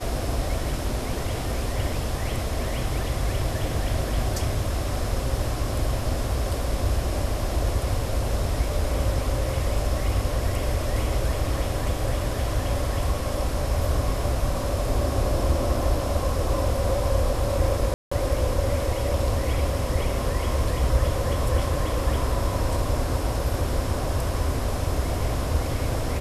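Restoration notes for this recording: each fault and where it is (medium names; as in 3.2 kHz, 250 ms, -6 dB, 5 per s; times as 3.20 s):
17.94–18.11 s: dropout 175 ms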